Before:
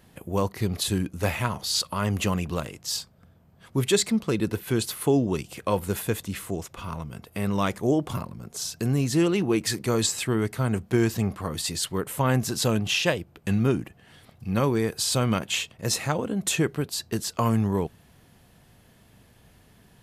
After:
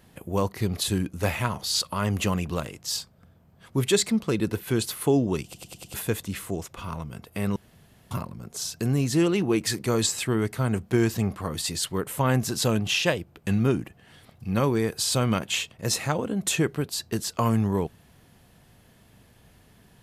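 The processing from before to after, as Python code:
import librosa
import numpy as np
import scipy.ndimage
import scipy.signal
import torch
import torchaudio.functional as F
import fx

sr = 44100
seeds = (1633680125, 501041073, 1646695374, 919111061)

y = fx.edit(x, sr, fx.stutter_over(start_s=5.44, slice_s=0.1, count=5),
    fx.room_tone_fill(start_s=7.56, length_s=0.55), tone=tone)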